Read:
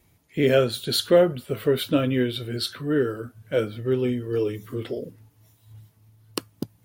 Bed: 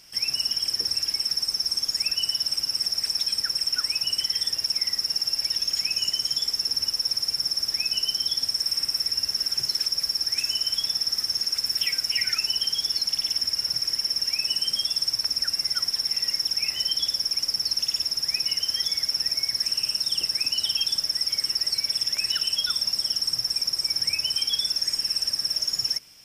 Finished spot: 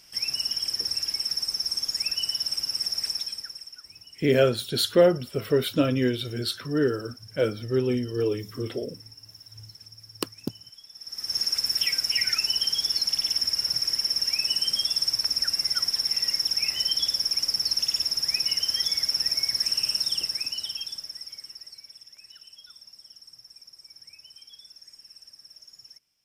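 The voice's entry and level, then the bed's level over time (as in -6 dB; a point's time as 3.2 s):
3.85 s, -1.0 dB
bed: 3.09 s -2.5 dB
3.88 s -22.5 dB
10.9 s -22.5 dB
11.37 s 0 dB
20 s 0 dB
22.08 s -23.5 dB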